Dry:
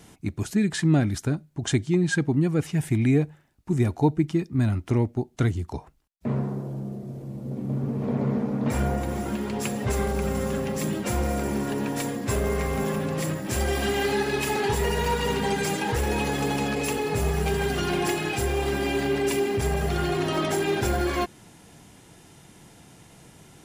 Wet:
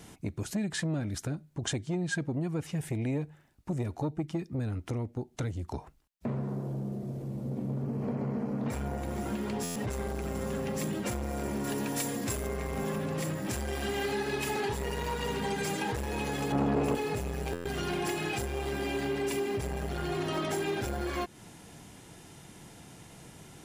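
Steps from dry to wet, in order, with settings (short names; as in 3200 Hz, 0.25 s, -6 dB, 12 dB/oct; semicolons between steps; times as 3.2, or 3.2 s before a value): 7.85–8.59 notch 3600 Hz, Q 5.5; 11.64–12.47 high shelf 3900 Hz +9 dB; compressor 3:1, threshold -30 dBFS, peak gain reduction 11 dB; 16.52–16.95 tilt shelf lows +9.5 dB, about 1400 Hz; stuck buffer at 9.63/17.52, samples 512, times 10; core saturation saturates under 470 Hz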